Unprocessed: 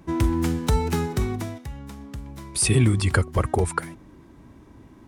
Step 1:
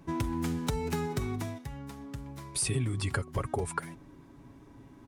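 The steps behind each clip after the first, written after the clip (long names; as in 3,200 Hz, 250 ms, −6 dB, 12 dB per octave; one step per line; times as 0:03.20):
comb filter 7.2 ms, depth 45%
downward compressor 4 to 1, threshold −23 dBFS, peak gain reduction 10.5 dB
level −5 dB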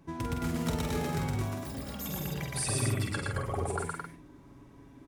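delay with pitch and tempo change per echo 185 ms, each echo +6 semitones, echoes 3, each echo −6 dB
double-tracking delay 47 ms −5.5 dB
on a send: loudspeakers that aren't time-aligned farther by 40 metres −1 dB, 75 metres −4 dB
on the sum: level −4.5 dB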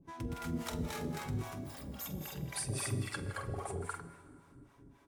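two-band tremolo in antiphase 3.7 Hz, depth 100%, crossover 550 Hz
dense smooth reverb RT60 2 s, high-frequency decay 0.95×, DRR 12.5 dB
level −2 dB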